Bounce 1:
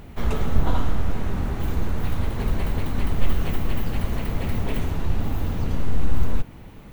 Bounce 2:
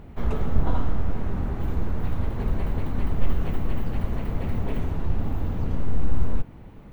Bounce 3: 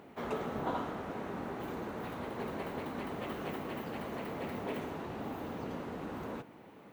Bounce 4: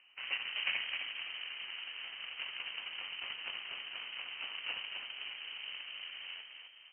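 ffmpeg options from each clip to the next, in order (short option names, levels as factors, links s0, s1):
-af "highshelf=f=2400:g=-12,volume=0.841"
-af "highpass=310,volume=0.841"
-filter_complex "[0:a]aeval=exprs='0.075*(cos(1*acos(clip(val(0)/0.075,-1,1)))-cos(1*PI/2))+0.0119*(cos(3*acos(clip(val(0)/0.075,-1,1)))-cos(3*PI/2))+0.00335*(cos(7*acos(clip(val(0)/0.075,-1,1)))-cos(7*PI/2))':c=same,asplit=6[s0][s1][s2][s3][s4][s5];[s1]adelay=260,afreqshift=-62,volume=0.531[s6];[s2]adelay=520,afreqshift=-124,volume=0.234[s7];[s3]adelay=780,afreqshift=-186,volume=0.102[s8];[s4]adelay=1040,afreqshift=-248,volume=0.0452[s9];[s5]adelay=1300,afreqshift=-310,volume=0.02[s10];[s0][s6][s7][s8][s9][s10]amix=inputs=6:normalize=0,lowpass=f=2700:t=q:w=0.5098,lowpass=f=2700:t=q:w=0.6013,lowpass=f=2700:t=q:w=0.9,lowpass=f=2700:t=q:w=2.563,afreqshift=-3200,volume=1.41"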